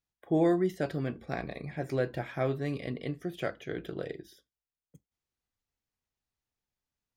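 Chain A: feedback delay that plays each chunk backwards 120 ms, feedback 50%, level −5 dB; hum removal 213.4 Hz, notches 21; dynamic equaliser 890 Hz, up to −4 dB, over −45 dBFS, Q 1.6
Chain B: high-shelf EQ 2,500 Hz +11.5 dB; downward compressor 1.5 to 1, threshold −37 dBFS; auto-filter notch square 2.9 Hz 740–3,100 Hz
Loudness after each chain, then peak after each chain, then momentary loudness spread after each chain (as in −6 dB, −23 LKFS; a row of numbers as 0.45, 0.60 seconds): −32.0, −37.0 LKFS; −16.0, −21.0 dBFS; 12, 9 LU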